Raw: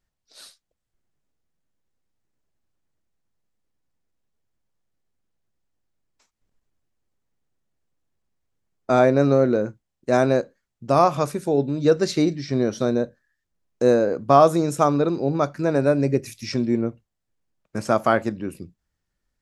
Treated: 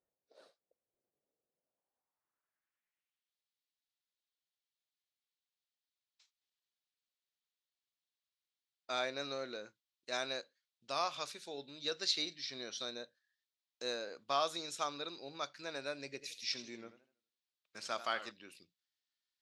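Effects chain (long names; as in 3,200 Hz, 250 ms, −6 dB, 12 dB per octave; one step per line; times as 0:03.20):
band-pass filter sweep 500 Hz → 3,800 Hz, 0:01.51–0:03.38
0:16.12–0:18.31: feedback echo with a swinging delay time 81 ms, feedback 35%, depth 161 cents, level −13.5 dB
level +1 dB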